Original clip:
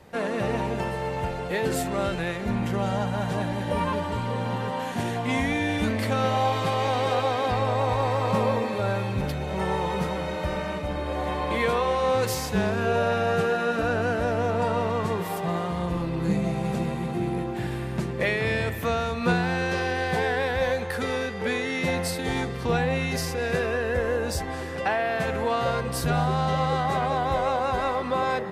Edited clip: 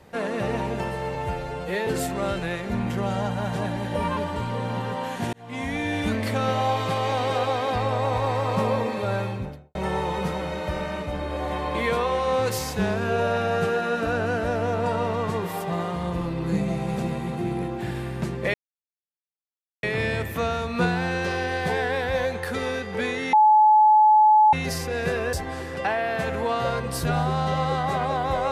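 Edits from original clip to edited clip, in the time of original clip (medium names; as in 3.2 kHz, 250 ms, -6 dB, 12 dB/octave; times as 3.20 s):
1.15–1.63 s: stretch 1.5×
5.09–5.87 s: fade in equal-power
8.94–9.51 s: studio fade out
18.30 s: insert silence 1.29 s
21.80–23.00 s: bleep 857 Hz -12 dBFS
23.80–24.34 s: delete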